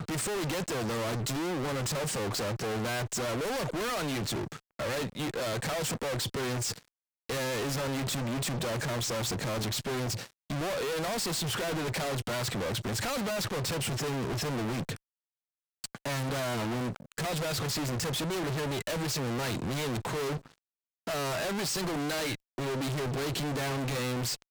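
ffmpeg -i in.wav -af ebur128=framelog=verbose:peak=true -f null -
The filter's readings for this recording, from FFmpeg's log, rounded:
Integrated loudness:
  I:         -32.2 LUFS
  Threshold: -42.3 LUFS
Loudness range:
  LRA:         1.9 LU
  Threshold: -52.5 LUFS
  LRA low:   -33.7 LUFS
  LRA high:  -31.8 LUFS
True peak:
  Peak:      -26.7 dBFS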